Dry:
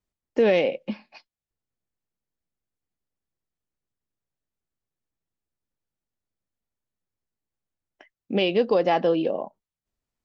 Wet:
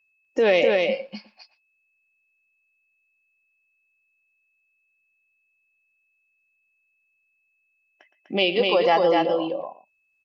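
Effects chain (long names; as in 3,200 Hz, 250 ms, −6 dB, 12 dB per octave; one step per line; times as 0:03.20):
low-shelf EQ 380 Hz −11 dB
slap from a distant wall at 20 metres, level −13 dB
in parallel at −3 dB: downward compressor, threshold −37 dBFS, peak gain reduction 16.5 dB
on the sum: steady tone 2,600 Hz −59 dBFS
noise reduction from a noise print of the clip's start 11 dB
on a send: single-tap delay 249 ms −3 dB
on the sum: level +4 dB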